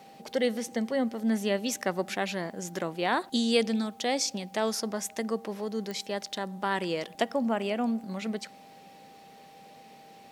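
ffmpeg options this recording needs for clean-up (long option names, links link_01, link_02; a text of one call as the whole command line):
ffmpeg -i in.wav -af "adeclick=threshold=4,bandreject=frequency=790:width=30" out.wav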